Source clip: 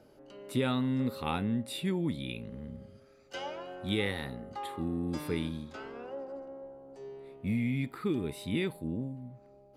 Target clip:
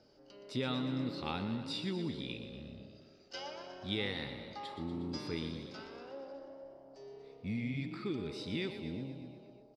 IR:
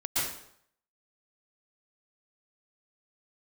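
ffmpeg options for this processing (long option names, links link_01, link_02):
-filter_complex "[0:a]lowpass=frequency=5100:width_type=q:width=5.2,asplit=9[link_01][link_02][link_03][link_04][link_05][link_06][link_07][link_08][link_09];[link_02]adelay=120,afreqshift=32,volume=-10.5dB[link_10];[link_03]adelay=240,afreqshift=64,volume=-14.2dB[link_11];[link_04]adelay=360,afreqshift=96,volume=-18dB[link_12];[link_05]adelay=480,afreqshift=128,volume=-21.7dB[link_13];[link_06]adelay=600,afreqshift=160,volume=-25.5dB[link_14];[link_07]adelay=720,afreqshift=192,volume=-29.2dB[link_15];[link_08]adelay=840,afreqshift=224,volume=-33dB[link_16];[link_09]adelay=960,afreqshift=256,volume=-36.7dB[link_17];[link_01][link_10][link_11][link_12][link_13][link_14][link_15][link_16][link_17]amix=inputs=9:normalize=0,asplit=2[link_18][link_19];[1:a]atrim=start_sample=2205,adelay=111[link_20];[link_19][link_20]afir=irnorm=-1:irlink=0,volume=-25.5dB[link_21];[link_18][link_21]amix=inputs=2:normalize=0,volume=-6.5dB"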